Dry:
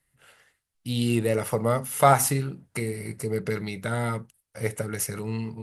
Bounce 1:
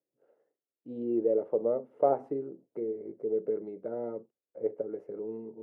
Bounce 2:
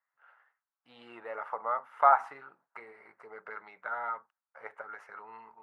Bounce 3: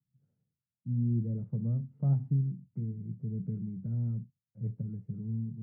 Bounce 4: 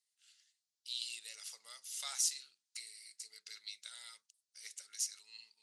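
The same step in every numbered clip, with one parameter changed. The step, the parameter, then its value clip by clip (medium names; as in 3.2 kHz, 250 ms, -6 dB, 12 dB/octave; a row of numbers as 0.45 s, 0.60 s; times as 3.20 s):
Butterworth band-pass, frequency: 420 Hz, 1.1 kHz, 150 Hz, 5.4 kHz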